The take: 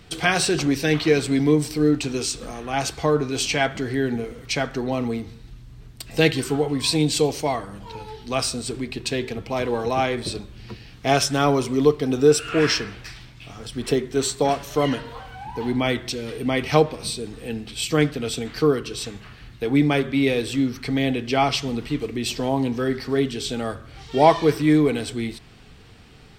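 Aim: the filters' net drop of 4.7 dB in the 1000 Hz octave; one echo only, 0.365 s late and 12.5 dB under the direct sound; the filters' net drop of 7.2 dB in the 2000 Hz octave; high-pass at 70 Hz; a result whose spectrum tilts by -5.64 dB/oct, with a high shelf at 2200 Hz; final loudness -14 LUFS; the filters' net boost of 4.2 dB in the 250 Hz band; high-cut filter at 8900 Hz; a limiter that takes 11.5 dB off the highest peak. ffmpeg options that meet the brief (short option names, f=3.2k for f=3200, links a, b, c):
-af "highpass=70,lowpass=8.9k,equalizer=f=250:t=o:g=5.5,equalizer=f=1k:t=o:g=-5.5,equalizer=f=2k:t=o:g=-5.5,highshelf=f=2.2k:g=-4,alimiter=limit=-15dB:level=0:latency=1,aecho=1:1:365:0.237,volume=11dB"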